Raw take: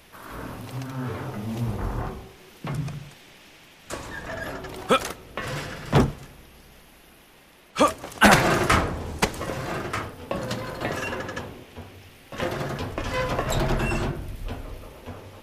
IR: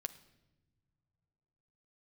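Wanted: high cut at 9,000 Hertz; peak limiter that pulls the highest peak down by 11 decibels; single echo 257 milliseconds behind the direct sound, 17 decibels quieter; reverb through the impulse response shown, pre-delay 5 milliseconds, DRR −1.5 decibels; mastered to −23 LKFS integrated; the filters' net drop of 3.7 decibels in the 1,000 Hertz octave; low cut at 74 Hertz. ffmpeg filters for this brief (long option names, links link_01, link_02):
-filter_complex "[0:a]highpass=74,lowpass=9000,equalizer=frequency=1000:width_type=o:gain=-5,alimiter=limit=-15.5dB:level=0:latency=1,aecho=1:1:257:0.141,asplit=2[link_01][link_02];[1:a]atrim=start_sample=2205,adelay=5[link_03];[link_02][link_03]afir=irnorm=-1:irlink=0,volume=3.5dB[link_04];[link_01][link_04]amix=inputs=2:normalize=0,volume=4.5dB"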